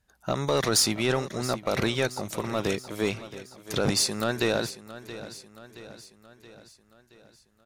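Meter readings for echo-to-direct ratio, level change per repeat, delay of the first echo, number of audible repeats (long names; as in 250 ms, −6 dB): −13.5 dB, −5.5 dB, 674 ms, 4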